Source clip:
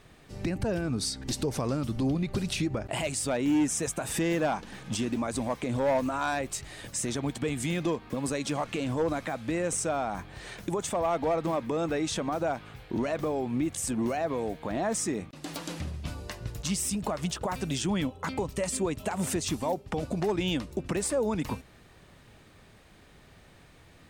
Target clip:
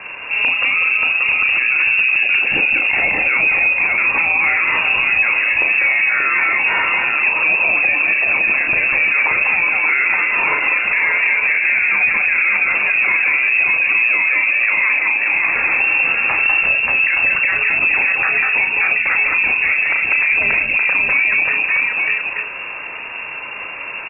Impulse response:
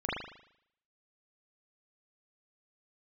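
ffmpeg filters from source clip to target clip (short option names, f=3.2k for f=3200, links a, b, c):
-filter_complex "[0:a]bandreject=f=50:t=h:w=6,bandreject=f=100:t=h:w=6,bandreject=f=150:t=h:w=6,bandreject=f=200:t=h:w=6,bandreject=f=250:t=h:w=6,acompressor=threshold=-36dB:ratio=16,asplit=2[a][b];[b]adelay=35,volume=-7.5dB[c];[a][c]amix=inputs=2:normalize=0,aecho=1:1:43|195|199|583|608|869:0.119|0.422|0.473|0.596|0.15|0.422,lowpass=f=2.4k:t=q:w=0.5098,lowpass=f=2.4k:t=q:w=0.6013,lowpass=f=2.4k:t=q:w=0.9,lowpass=f=2.4k:t=q:w=2.563,afreqshift=-2800,alimiter=level_in=30.5dB:limit=-1dB:release=50:level=0:latency=1,volume=-6dB"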